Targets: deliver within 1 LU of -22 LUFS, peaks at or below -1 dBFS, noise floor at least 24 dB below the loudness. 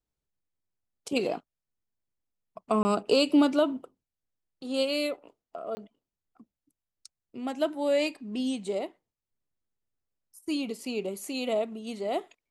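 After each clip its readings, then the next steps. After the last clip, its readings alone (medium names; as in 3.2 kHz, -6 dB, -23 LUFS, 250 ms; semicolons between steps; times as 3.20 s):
dropouts 2; longest dropout 20 ms; loudness -29.0 LUFS; peak level -11.5 dBFS; loudness target -22.0 LUFS
-> interpolate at 2.83/5.75 s, 20 ms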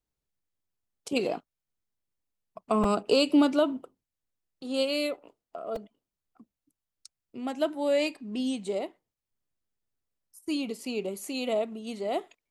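dropouts 0; loudness -29.0 LUFS; peak level -11.5 dBFS; loudness target -22.0 LUFS
-> trim +7 dB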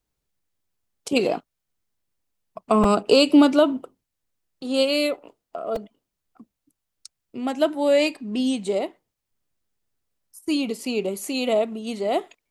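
loudness -22.0 LUFS; peak level -4.5 dBFS; noise floor -82 dBFS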